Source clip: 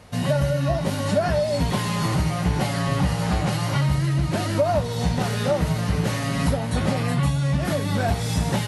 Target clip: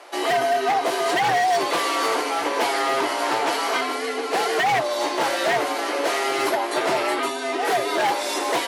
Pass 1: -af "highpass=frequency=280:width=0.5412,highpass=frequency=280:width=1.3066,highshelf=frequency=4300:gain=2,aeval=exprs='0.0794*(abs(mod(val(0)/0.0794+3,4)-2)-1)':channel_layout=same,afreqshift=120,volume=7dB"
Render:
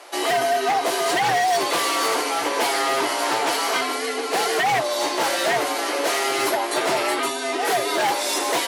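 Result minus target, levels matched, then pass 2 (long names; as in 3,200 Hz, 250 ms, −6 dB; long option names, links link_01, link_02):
8,000 Hz band +4.5 dB
-af "highpass=frequency=280:width=0.5412,highpass=frequency=280:width=1.3066,highshelf=frequency=4300:gain=-5.5,aeval=exprs='0.0794*(abs(mod(val(0)/0.0794+3,4)-2)-1)':channel_layout=same,afreqshift=120,volume=7dB"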